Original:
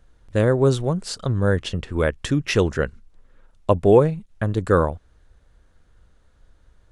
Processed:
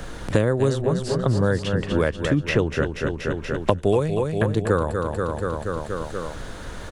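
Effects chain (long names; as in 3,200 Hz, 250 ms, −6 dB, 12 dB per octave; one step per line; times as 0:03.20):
on a send: repeating echo 239 ms, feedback 52%, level −9 dB
on the sum: multiband upward and downward compressor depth 100%
level −2 dB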